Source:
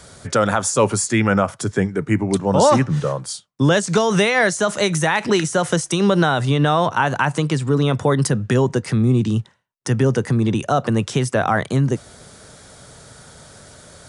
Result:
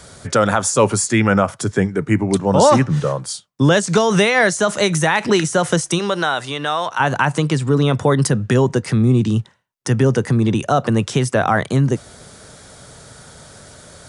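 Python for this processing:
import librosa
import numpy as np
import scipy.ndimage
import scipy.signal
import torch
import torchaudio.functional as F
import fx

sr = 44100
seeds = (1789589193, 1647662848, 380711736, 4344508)

y = fx.highpass(x, sr, hz=fx.line((5.98, 650.0), (6.99, 1400.0)), slope=6, at=(5.98, 6.99), fade=0.02)
y = y * 10.0 ** (2.0 / 20.0)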